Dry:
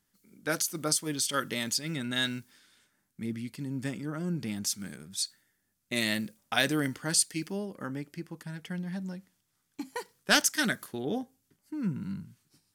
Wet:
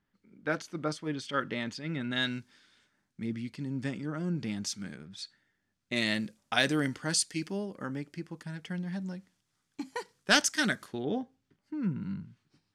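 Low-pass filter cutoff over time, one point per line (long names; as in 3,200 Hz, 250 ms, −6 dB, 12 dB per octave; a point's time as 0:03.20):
0:01.95 2,500 Hz
0:02.37 5,500 Hz
0:04.76 5,500 Hz
0:05.18 2,900 Hz
0:06.39 7,500 Hz
0:10.77 7,500 Hz
0:11.17 3,600 Hz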